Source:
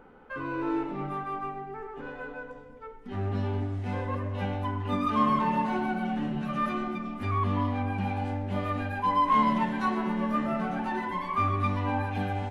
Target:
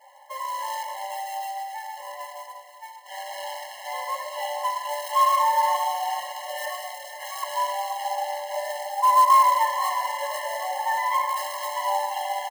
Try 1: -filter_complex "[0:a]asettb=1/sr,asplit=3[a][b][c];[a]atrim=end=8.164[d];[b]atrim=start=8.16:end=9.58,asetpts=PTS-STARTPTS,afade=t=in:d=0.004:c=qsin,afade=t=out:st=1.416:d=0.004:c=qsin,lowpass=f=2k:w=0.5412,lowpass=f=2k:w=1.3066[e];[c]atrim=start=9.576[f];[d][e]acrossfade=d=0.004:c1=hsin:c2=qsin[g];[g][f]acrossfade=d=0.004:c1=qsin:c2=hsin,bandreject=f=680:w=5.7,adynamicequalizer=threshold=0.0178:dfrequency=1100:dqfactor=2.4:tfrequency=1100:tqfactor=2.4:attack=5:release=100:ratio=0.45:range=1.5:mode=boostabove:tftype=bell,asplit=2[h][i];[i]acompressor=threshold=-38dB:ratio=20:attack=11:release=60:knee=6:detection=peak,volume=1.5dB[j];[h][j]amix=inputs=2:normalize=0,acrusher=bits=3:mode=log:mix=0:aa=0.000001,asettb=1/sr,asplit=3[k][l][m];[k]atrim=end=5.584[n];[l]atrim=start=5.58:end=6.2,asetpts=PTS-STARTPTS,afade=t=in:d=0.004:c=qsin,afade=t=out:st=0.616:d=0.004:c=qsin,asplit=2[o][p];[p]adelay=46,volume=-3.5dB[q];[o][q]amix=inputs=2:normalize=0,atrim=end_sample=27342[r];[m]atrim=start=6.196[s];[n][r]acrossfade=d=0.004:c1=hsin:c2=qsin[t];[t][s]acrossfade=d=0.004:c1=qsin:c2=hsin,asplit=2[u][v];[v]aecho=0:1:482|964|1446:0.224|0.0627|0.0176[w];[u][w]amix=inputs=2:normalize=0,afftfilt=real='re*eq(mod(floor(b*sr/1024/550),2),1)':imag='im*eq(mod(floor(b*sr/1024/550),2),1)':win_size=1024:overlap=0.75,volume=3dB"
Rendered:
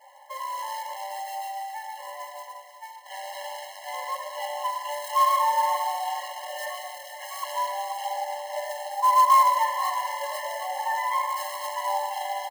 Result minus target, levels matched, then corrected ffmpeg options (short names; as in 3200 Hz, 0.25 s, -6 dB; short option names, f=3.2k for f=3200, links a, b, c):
compressor: peak gain reduction +7 dB
-filter_complex "[0:a]asettb=1/sr,asplit=3[a][b][c];[a]atrim=end=8.164[d];[b]atrim=start=8.16:end=9.58,asetpts=PTS-STARTPTS,afade=t=in:d=0.004:c=qsin,afade=t=out:st=1.416:d=0.004:c=qsin,lowpass=f=2k:w=0.5412,lowpass=f=2k:w=1.3066[e];[c]atrim=start=9.576[f];[d][e]acrossfade=d=0.004:c1=hsin:c2=qsin[g];[g][f]acrossfade=d=0.004:c1=qsin:c2=hsin,bandreject=f=680:w=5.7,adynamicequalizer=threshold=0.0178:dfrequency=1100:dqfactor=2.4:tfrequency=1100:tqfactor=2.4:attack=5:release=100:ratio=0.45:range=1.5:mode=boostabove:tftype=bell,asplit=2[h][i];[i]acompressor=threshold=-30.5dB:ratio=20:attack=11:release=60:knee=6:detection=peak,volume=1.5dB[j];[h][j]amix=inputs=2:normalize=0,acrusher=bits=3:mode=log:mix=0:aa=0.000001,asettb=1/sr,asplit=3[k][l][m];[k]atrim=end=5.584[n];[l]atrim=start=5.58:end=6.2,asetpts=PTS-STARTPTS,afade=t=in:d=0.004:c=qsin,afade=t=out:st=0.616:d=0.004:c=qsin,asplit=2[o][p];[p]adelay=46,volume=-3.5dB[q];[o][q]amix=inputs=2:normalize=0,atrim=end_sample=27342[r];[m]atrim=start=6.196[s];[n][r]acrossfade=d=0.004:c1=hsin:c2=qsin[t];[t][s]acrossfade=d=0.004:c1=qsin:c2=hsin,asplit=2[u][v];[v]aecho=0:1:482|964|1446:0.224|0.0627|0.0176[w];[u][w]amix=inputs=2:normalize=0,afftfilt=real='re*eq(mod(floor(b*sr/1024/550),2),1)':imag='im*eq(mod(floor(b*sr/1024/550),2),1)':win_size=1024:overlap=0.75,volume=3dB"